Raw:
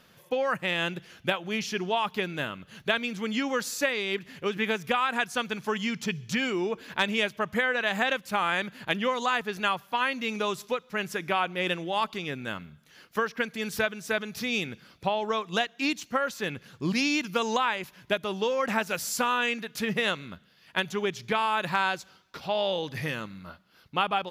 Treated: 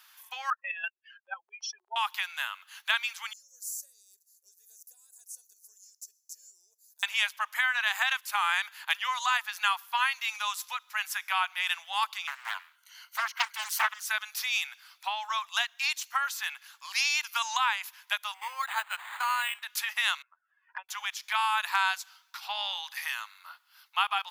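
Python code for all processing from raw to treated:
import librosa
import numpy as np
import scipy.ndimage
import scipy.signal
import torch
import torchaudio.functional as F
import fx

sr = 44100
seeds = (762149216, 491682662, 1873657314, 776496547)

y = fx.chain(x, sr, fx.spec_expand(power=3.9),
    fx.peak_eq(hz=340.0, db=11.5, octaves=1.6),
    fx.level_steps(step_db=13), at=(0.5, 1.96))
y = fx.chain(y, sr, fx.cheby2_bandstop(low_hz=790.0, high_hz=3300.0, order=4, stop_db=50),
    fx.high_shelf(hz=5200.0, db=-7.0), at=(3.33, 7.03))
y = fx.chain(y, sr, fx.ripple_eq(per_octave=1.9, db=11),
    fx.doppler_dist(depth_ms=0.96), at=(12.27, 14.05))
y = fx.chain(y, sr, fx.high_shelf(hz=6800.0, db=-9.5),
    fx.resample_linear(factor=8), at=(18.34, 19.63))
y = fx.chain(y, sr, fx.spec_expand(power=1.8),
    fx.lowpass(hz=1600.0, slope=24),
    fx.env_flanger(rest_ms=2.3, full_db=-30.5), at=(20.22, 20.89))
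y = scipy.signal.sosfilt(scipy.signal.butter(8, 850.0, 'highpass', fs=sr, output='sos'), y)
y = fx.high_shelf(y, sr, hz=7700.0, db=11.5)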